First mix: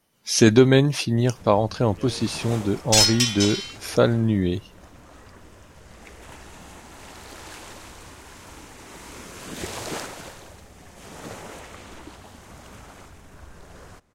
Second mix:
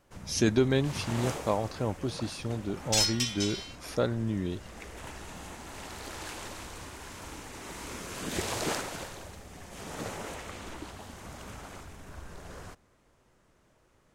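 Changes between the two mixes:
speech -10.0 dB; first sound: entry -1.25 s; second sound -9.0 dB

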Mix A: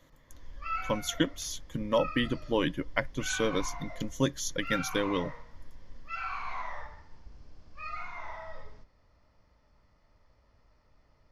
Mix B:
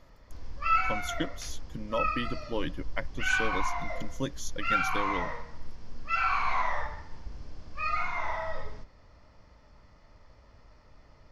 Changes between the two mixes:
speech -5.5 dB; background +9.0 dB

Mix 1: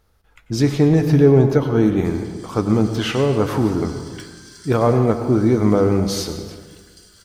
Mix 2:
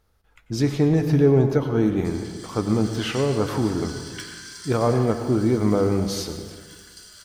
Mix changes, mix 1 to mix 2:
speech -4.5 dB; background: send on

